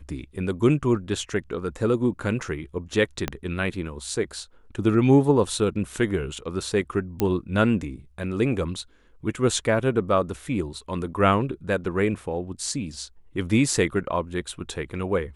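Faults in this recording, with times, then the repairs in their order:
0:03.28: click −10 dBFS
0:07.20: click −9 dBFS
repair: click removal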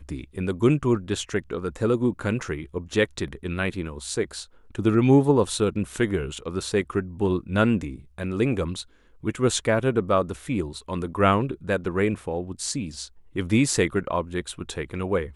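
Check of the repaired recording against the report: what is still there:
0:03.28: click

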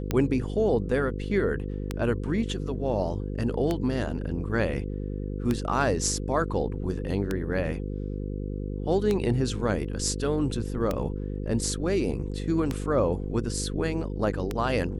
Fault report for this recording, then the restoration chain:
mains buzz 50 Hz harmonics 10 −32 dBFS
scratch tick 33 1/3 rpm −13 dBFS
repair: click removal
hum removal 50 Hz, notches 10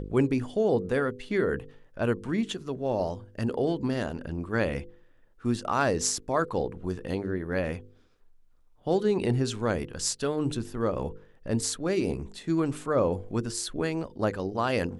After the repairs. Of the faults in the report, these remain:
none of them is left

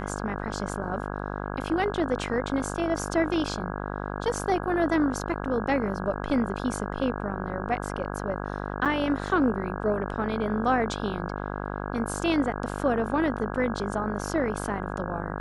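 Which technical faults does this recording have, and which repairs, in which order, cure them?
mains buzz 50 Hz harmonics 33 −33 dBFS
0:08.85–0:08.86: drop-out 7.3 ms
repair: hum removal 50 Hz, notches 33
repair the gap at 0:08.85, 7.3 ms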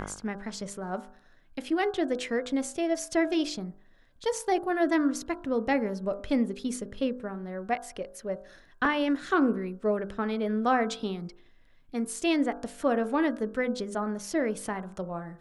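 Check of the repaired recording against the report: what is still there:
none of them is left

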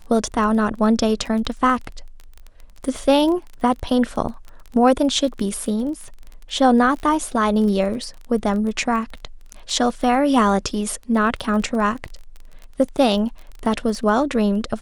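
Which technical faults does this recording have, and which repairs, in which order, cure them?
surface crackle 21 per second −28 dBFS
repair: click removal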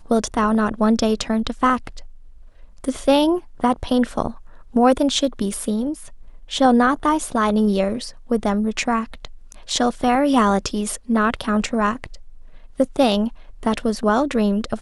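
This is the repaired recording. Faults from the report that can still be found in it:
none of them is left

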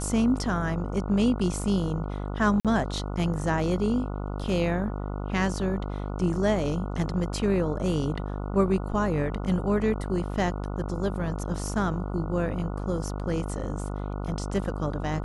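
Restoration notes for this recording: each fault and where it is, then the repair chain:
mains buzz 50 Hz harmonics 29 −32 dBFS
0:02.60–0:02.65: drop-out 47 ms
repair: hum removal 50 Hz, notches 29
repair the gap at 0:02.60, 47 ms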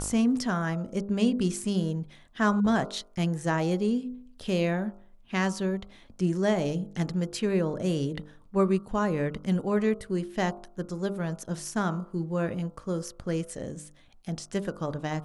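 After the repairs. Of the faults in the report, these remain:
none of them is left

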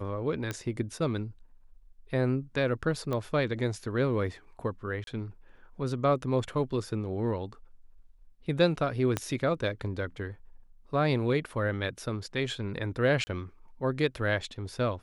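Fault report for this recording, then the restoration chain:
0:00.51: click −18 dBFS
0:03.13: click −20 dBFS
0:05.04–0:05.07: drop-out 32 ms
0:09.17: click −14 dBFS
0:13.24–0:13.27: drop-out 30 ms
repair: click removal
repair the gap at 0:05.04, 32 ms
repair the gap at 0:13.24, 30 ms

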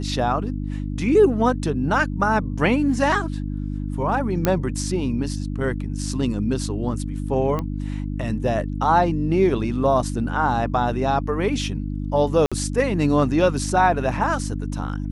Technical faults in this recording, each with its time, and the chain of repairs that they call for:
mains hum 50 Hz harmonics 6 −27 dBFS
0:04.45: click −5 dBFS
0:07.59: click −14 dBFS
0:12.46–0:12.52: drop-out 56 ms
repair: click removal
hum removal 50 Hz, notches 6
repair the gap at 0:12.46, 56 ms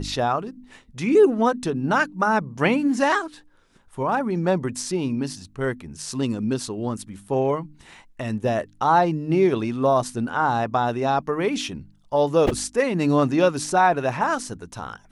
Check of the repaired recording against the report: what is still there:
none of them is left

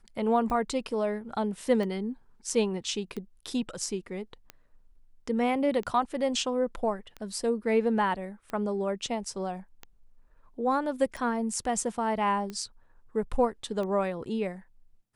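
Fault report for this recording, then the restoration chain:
scratch tick 45 rpm −24 dBFS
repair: click removal

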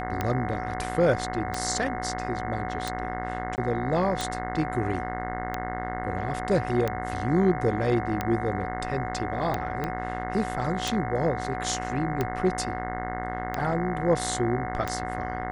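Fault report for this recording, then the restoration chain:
mains buzz 60 Hz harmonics 36 −34 dBFS
scratch tick 45 rpm −13 dBFS
whistle 740 Hz −33 dBFS
0:03.56–0:03.58: drop-out 19 ms
0:09.84: click −16 dBFS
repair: click removal
hum removal 60 Hz, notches 36
notch filter 740 Hz, Q 30
repair the gap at 0:03.56, 19 ms

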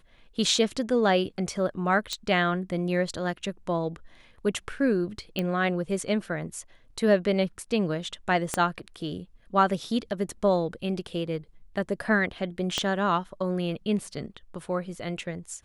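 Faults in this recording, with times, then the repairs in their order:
0:02.13: click −16 dBFS
0:05.39: click −15 dBFS
0:08.54: click −11 dBFS
0:12.78: click −12 dBFS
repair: click removal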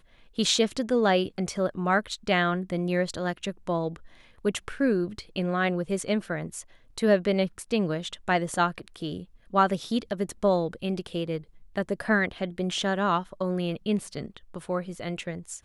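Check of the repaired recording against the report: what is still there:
0:02.13: click
0:08.54: click
0:12.78: click

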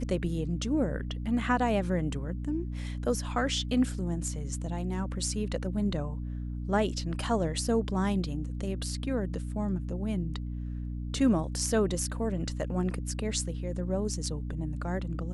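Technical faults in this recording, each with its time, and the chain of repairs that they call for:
mains hum 60 Hz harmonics 5 −35 dBFS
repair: hum removal 60 Hz, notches 5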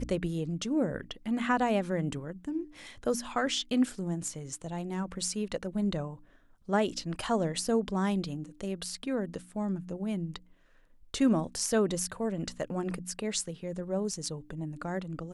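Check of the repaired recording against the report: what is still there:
none of them is left

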